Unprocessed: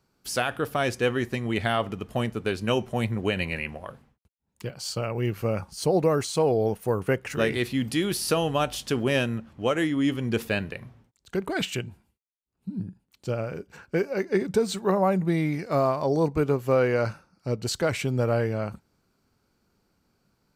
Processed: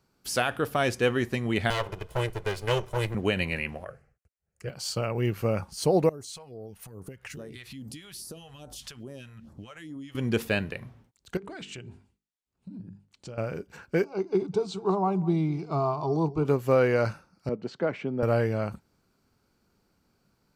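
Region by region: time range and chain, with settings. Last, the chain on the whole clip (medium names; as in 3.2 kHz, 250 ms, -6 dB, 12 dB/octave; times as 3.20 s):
1.70–3.15 s: comb filter that takes the minimum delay 2 ms + peaking EQ 250 Hz -12 dB 0.46 oct
3.84–4.68 s: low-pass 8.5 kHz + static phaser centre 960 Hz, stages 6
6.09–10.15 s: compression 10:1, threshold -37 dBFS + phase shifter stages 2, 2.4 Hz, lowest notch 260–2700 Hz
11.37–13.38 s: low-pass 8.8 kHz 24 dB/octave + hum notches 50/100/150/200/250/300/350/400/450 Hz + compression, threshold -38 dBFS
14.04–16.45 s: distance through air 130 m + static phaser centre 360 Hz, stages 8 + delay 207 ms -19 dB
17.49–18.23 s: high-pass 170 Hz 24 dB/octave + tape spacing loss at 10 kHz 38 dB + band-stop 3.9 kHz, Q 27
whole clip: none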